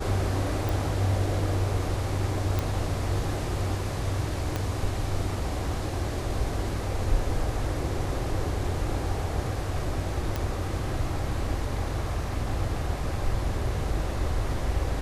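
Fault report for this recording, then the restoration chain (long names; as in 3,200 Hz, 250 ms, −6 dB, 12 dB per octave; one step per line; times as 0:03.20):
0:00.69: click
0:02.59: click −13 dBFS
0:04.56: click −14 dBFS
0:10.36: click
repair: click removal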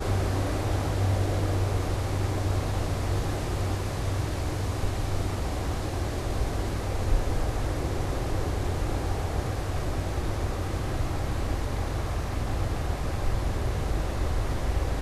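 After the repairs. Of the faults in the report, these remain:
0:04.56: click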